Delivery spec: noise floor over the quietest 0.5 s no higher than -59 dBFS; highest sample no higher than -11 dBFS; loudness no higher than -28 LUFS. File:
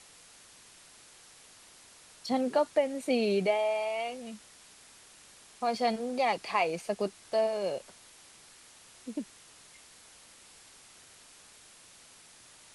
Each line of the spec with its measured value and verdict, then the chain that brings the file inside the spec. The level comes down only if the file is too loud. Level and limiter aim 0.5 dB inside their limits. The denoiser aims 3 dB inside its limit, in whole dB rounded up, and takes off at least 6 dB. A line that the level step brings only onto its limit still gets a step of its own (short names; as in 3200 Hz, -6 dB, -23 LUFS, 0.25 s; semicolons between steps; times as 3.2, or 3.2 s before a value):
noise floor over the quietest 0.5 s -56 dBFS: fail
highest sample -15.0 dBFS: OK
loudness -31.0 LUFS: OK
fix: denoiser 6 dB, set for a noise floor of -56 dBFS